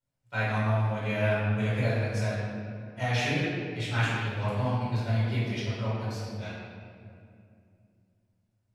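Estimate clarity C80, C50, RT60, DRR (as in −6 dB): 0.0 dB, −2.5 dB, 2.5 s, −10.5 dB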